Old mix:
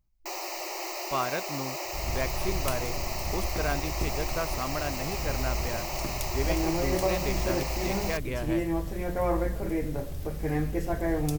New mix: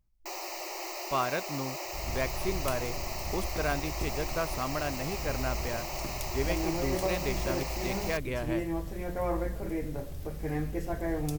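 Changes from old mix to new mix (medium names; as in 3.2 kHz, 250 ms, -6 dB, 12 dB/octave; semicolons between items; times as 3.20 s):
first sound -3.0 dB; second sound -4.0 dB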